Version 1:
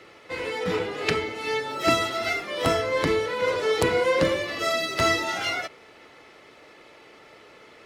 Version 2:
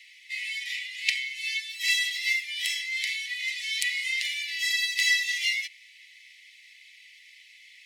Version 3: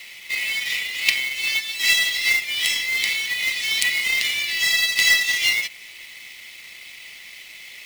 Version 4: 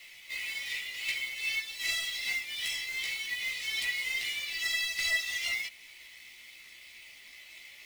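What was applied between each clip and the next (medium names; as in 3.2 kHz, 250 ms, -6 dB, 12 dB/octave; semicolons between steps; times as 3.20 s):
Chebyshev high-pass 1.9 kHz, order 8; trim +3.5 dB
in parallel at 0 dB: compression 8:1, threshold -37 dBFS, peak gain reduction 17.5 dB; on the sum: companded quantiser 4-bit; trim +5 dB
saturation -14.5 dBFS, distortion -14 dB; chorus voices 6, 0.55 Hz, delay 16 ms, depth 2 ms; trim -7.5 dB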